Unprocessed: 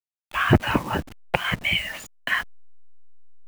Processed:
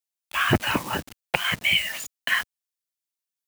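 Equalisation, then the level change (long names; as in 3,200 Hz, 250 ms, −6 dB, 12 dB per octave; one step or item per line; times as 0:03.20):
high-pass filter 100 Hz 6 dB per octave
high-shelf EQ 2,500 Hz +11.5 dB
−3.5 dB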